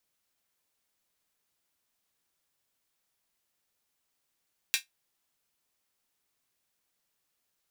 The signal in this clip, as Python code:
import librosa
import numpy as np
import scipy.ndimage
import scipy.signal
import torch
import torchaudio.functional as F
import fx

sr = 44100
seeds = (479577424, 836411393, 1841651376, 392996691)

y = fx.drum_hat(sr, length_s=0.24, from_hz=2300.0, decay_s=0.14)